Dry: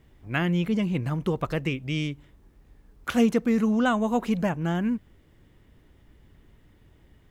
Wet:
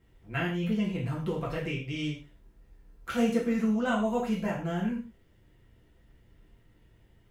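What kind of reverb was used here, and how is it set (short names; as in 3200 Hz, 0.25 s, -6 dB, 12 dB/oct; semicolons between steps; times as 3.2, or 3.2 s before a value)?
non-linear reverb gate 0.16 s falling, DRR -5.5 dB; gain -10.5 dB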